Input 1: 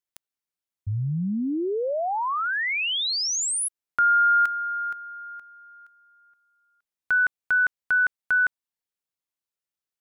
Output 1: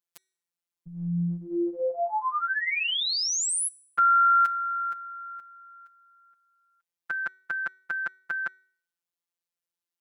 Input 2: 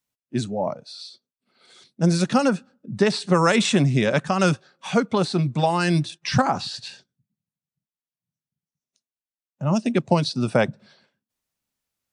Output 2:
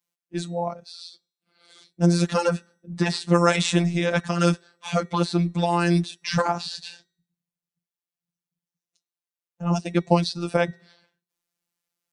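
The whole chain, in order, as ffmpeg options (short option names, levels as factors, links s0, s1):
-af "highpass=f=110:p=1,afftfilt=real='hypot(re,im)*cos(PI*b)':imag='0':win_size=1024:overlap=0.75,bandreject=f=378:t=h:w=4,bandreject=f=756:t=h:w=4,bandreject=f=1134:t=h:w=4,bandreject=f=1512:t=h:w=4,bandreject=f=1890:t=h:w=4,bandreject=f=2268:t=h:w=4,bandreject=f=2646:t=h:w=4,bandreject=f=3024:t=h:w=4,bandreject=f=3402:t=h:w=4,bandreject=f=3780:t=h:w=4,bandreject=f=4158:t=h:w=4,bandreject=f=4536:t=h:w=4,bandreject=f=4914:t=h:w=4,bandreject=f=5292:t=h:w=4,bandreject=f=5670:t=h:w=4,bandreject=f=6048:t=h:w=4,bandreject=f=6426:t=h:w=4,bandreject=f=6804:t=h:w=4,bandreject=f=7182:t=h:w=4,bandreject=f=7560:t=h:w=4,bandreject=f=7938:t=h:w=4,bandreject=f=8316:t=h:w=4,bandreject=f=8694:t=h:w=4,bandreject=f=9072:t=h:w=4,bandreject=f=9450:t=h:w=4,bandreject=f=9828:t=h:w=4,bandreject=f=10206:t=h:w=4,bandreject=f=10584:t=h:w=4,volume=1.26"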